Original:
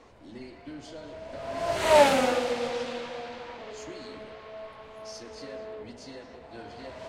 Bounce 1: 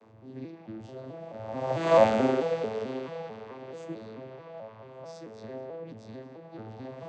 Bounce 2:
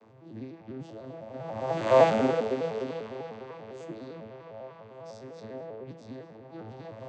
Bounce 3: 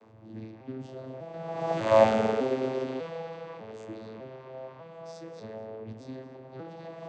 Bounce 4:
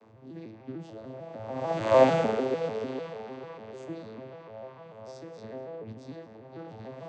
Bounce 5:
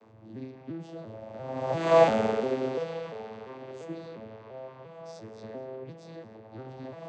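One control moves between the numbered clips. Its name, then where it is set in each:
vocoder on a broken chord, a note every: 219 ms, 100 ms, 599 ms, 149 ms, 346 ms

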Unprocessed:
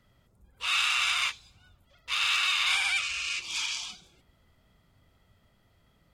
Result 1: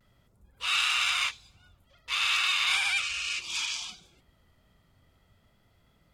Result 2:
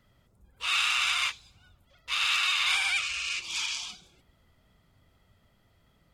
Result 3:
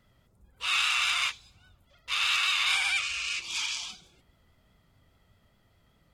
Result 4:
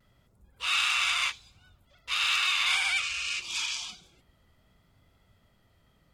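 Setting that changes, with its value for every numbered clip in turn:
vibrato, rate: 0.38 Hz, 16 Hz, 4.9 Hz, 0.64 Hz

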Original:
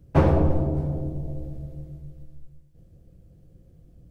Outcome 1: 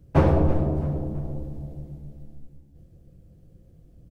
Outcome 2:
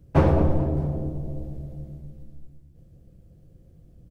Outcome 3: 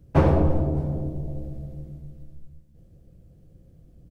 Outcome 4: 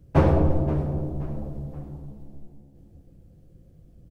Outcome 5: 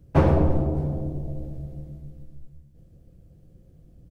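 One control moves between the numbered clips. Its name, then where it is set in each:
frequency-shifting echo, time: 330 ms, 218 ms, 82 ms, 526 ms, 123 ms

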